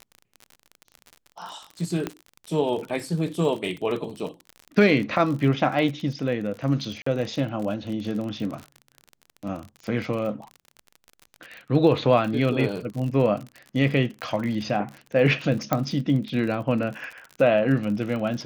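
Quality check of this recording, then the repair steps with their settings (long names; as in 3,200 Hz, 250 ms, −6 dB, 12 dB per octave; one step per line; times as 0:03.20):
surface crackle 43 per second −31 dBFS
0:02.07: click −13 dBFS
0:07.02–0:07.06: drop-out 44 ms
0:15.73: click −8 dBFS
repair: click removal
repair the gap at 0:07.02, 44 ms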